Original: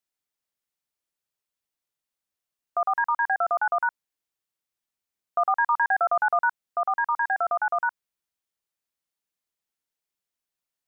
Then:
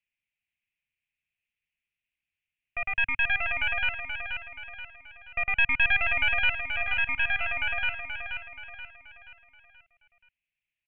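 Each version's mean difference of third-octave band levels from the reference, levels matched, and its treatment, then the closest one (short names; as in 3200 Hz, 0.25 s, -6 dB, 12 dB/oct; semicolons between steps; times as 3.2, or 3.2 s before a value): 12.0 dB: tracing distortion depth 0.081 ms; EQ curve 100 Hz 0 dB, 230 Hz -9 dB, 450 Hz -23 dB, 640 Hz -16 dB, 1100 Hz -26 dB, 1600 Hz -7 dB, 2500 Hz +10 dB, 4900 Hz -27 dB; on a send: feedback echo 0.479 s, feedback 44%, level -7 dB; on the sum: gain +4 dB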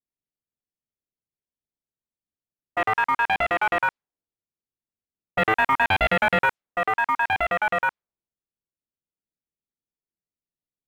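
16.5 dB: low-pass opened by the level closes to 350 Hz, open at -19.5 dBFS; in parallel at -9 dB: short-mantissa float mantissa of 2-bit; on the sum: Doppler distortion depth 0.5 ms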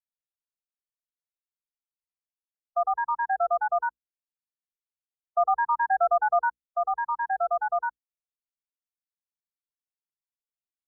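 3.5 dB: tilt -5.5 dB/oct; notches 60/120/180/240/300/360/420/480 Hz; spectral expander 1.5:1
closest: third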